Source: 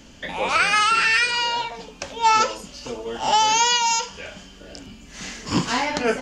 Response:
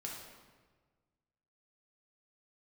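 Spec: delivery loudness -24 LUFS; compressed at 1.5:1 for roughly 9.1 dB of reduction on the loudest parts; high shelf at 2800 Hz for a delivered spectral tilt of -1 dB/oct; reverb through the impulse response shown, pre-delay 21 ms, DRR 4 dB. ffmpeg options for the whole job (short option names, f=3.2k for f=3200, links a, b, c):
-filter_complex "[0:a]highshelf=f=2.8k:g=6.5,acompressor=threshold=-38dB:ratio=1.5,asplit=2[a][b];[1:a]atrim=start_sample=2205,adelay=21[c];[b][c]afir=irnorm=-1:irlink=0,volume=-3dB[d];[a][d]amix=inputs=2:normalize=0,volume=1dB"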